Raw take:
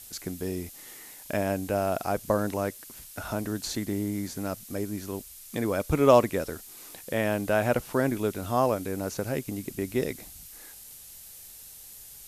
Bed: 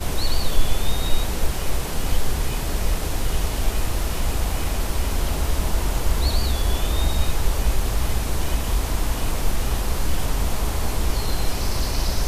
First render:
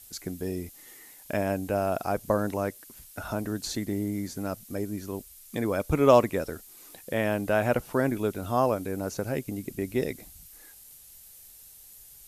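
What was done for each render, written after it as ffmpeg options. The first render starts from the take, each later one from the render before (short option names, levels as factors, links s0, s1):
-af "afftdn=nr=6:nf=-47"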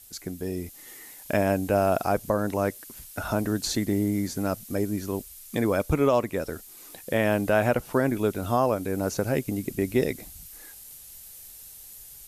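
-af "dynaudnorm=f=490:g=3:m=1.78,alimiter=limit=0.266:level=0:latency=1:release=430"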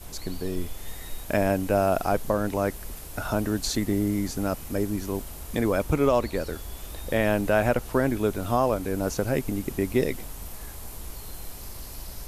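-filter_complex "[1:a]volume=0.133[s0];[0:a][s0]amix=inputs=2:normalize=0"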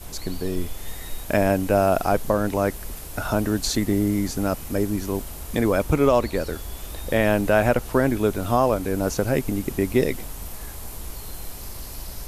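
-af "volume=1.5"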